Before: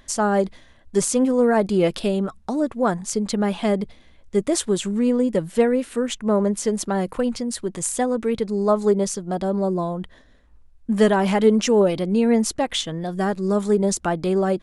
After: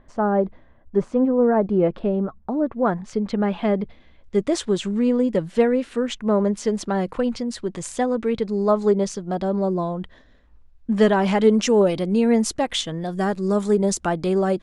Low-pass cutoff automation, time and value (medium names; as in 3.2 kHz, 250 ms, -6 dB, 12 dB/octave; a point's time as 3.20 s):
2.50 s 1.2 kHz
3.00 s 2.6 kHz
3.82 s 2.6 kHz
4.44 s 5.3 kHz
11.08 s 5.3 kHz
11.74 s 9.9 kHz